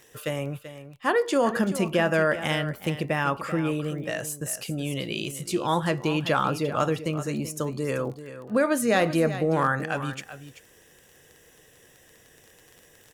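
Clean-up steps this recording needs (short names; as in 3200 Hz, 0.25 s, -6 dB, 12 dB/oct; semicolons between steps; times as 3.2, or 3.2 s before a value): clip repair -12.5 dBFS; de-click; inverse comb 0.385 s -12.5 dB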